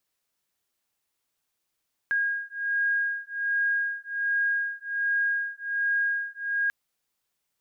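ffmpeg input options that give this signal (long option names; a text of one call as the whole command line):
ffmpeg -f lavfi -i "aevalsrc='0.0422*(sin(2*PI*1630*t)+sin(2*PI*1631.3*t))':duration=4.59:sample_rate=44100" out.wav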